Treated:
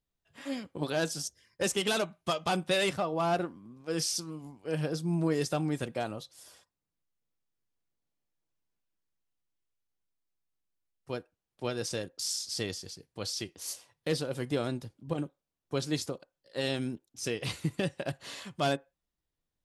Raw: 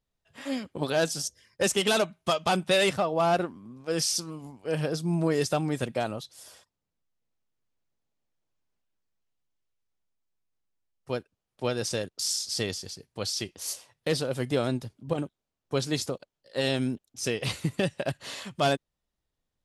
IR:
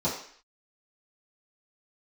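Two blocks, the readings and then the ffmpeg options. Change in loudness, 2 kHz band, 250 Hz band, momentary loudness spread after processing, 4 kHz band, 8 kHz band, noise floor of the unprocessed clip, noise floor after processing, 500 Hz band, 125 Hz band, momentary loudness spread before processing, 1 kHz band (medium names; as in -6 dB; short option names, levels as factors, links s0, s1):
-4.5 dB, -4.5 dB, -3.0 dB, 12 LU, -4.5 dB, -4.5 dB, under -85 dBFS, under -85 dBFS, -5.0 dB, -3.5 dB, 11 LU, -4.5 dB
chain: -filter_complex "[0:a]asplit=2[s0][s1];[1:a]atrim=start_sample=2205,asetrate=83790,aresample=44100,lowpass=1800[s2];[s1][s2]afir=irnorm=-1:irlink=0,volume=0.0841[s3];[s0][s3]amix=inputs=2:normalize=0,volume=0.596"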